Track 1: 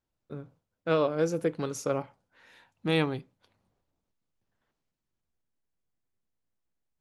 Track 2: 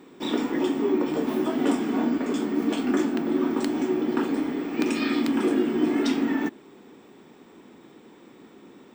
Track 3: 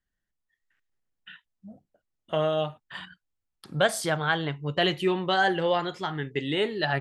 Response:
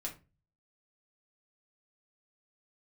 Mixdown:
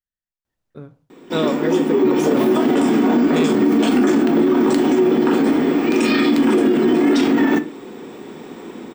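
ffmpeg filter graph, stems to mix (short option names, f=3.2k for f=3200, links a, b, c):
-filter_complex "[0:a]adelay=450,volume=2.5dB,asplit=2[a][b];[b]volume=-13.5dB[c];[1:a]equalizer=f=440:w=1.6:g=3,dynaudnorm=f=100:g=21:m=11dB,adelay=1100,volume=1.5dB,asplit=2[d][e];[e]volume=-5dB[f];[2:a]volume=-13.5dB[g];[3:a]atrim=start_sample=2205[h];[c][f]amix=inputs=2:normalize=0[i];[i][h]afir=irnorm=-1:irlink=0[j];[a][d][g][j]amix=inputs=4:normalize=0,alimiter=limit=-8dB:level=0:latency=1:release=25"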